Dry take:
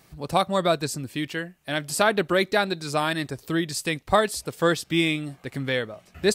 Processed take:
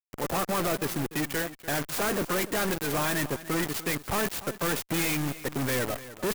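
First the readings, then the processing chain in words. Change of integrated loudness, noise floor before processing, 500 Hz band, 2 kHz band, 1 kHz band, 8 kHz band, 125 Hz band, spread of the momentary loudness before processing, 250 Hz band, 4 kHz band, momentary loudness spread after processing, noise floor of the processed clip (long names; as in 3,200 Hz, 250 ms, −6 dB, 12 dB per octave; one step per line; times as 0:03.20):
−3.5 dB, −58 dBFS, −6.5 dB, −4.0 dB, −6.0 dB, +0.5 dB, −2.5 dB, 8 LU, −3.5 dB, −5.5 dB, 4 LU, −54 dBFS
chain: spectral magnitudes quantised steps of 30 dB
low-pass filter 1,600 Hz 6 dB per octave
low-shelf EQ 280 Hz −9 dB
fuzz pedal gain 45 dB, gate −42 dBFS
sample-and-hold tremolo
hard clipping −26 dBFS, distortion −9 dB
single-tap delay 294 ms −15.5 dB
converter with an unsteady clock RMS 0.059 ms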